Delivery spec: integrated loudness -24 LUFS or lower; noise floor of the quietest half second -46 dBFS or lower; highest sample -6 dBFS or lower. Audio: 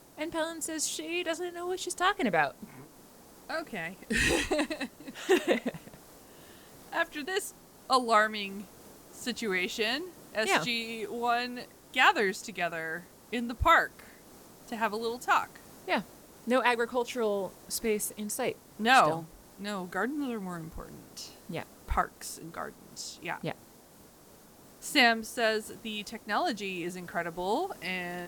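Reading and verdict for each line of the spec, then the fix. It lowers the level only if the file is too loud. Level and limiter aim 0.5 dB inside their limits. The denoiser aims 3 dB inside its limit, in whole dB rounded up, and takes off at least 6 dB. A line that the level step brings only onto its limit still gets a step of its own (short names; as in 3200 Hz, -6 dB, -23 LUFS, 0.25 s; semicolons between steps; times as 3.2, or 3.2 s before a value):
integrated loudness -30.5 LUFS: OK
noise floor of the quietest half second -56 dBFS: OK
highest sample -9.0 dBFS: OK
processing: none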